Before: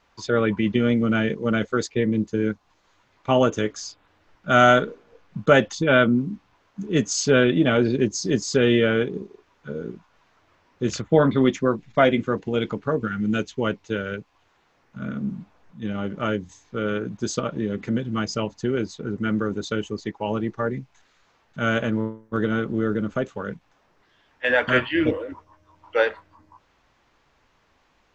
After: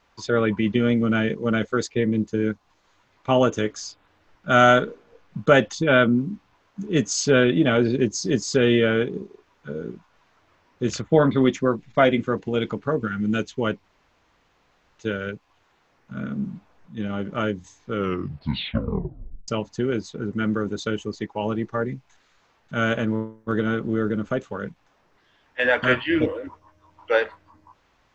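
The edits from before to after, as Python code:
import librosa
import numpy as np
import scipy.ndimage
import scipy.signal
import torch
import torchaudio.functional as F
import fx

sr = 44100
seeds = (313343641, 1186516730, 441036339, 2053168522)

y = fx.edit(x, sr, fx.insert_room_tone(at_s=13.84, length_s=1.15),
    fx.tape_stop(start_s=16.77, length_s=1.56), tone=tone)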